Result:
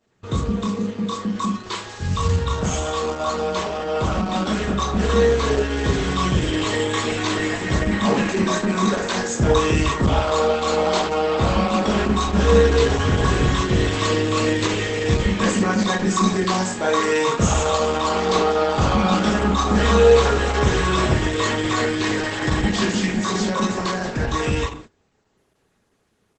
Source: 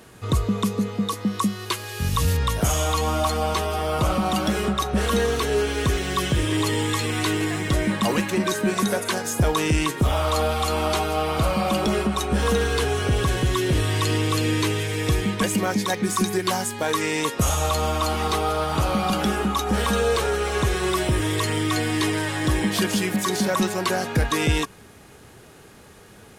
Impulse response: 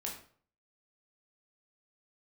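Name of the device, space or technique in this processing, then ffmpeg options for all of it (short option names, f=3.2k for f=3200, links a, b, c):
speakerphone in a meeting room: -filter_complex "[1:a]atrim=start_sample=2205[a];[0:a][a]afir=irnorm=-1:irlink=0,asplit=2[b][c];[c]adelay=100,highpass=300,lowpass=3.4k,asoftclip=type=hard:threshold=-13.5dB,volume=-25dB[d];[b][d]amix=inputs=2:normalize=0,dynaudnorm=f=890:g=11:m=7dB,agate=range=-18dB:threshold=-38dB:ratio=16:detection=peak" -ar 48000 -c:a libopus -b:a 12k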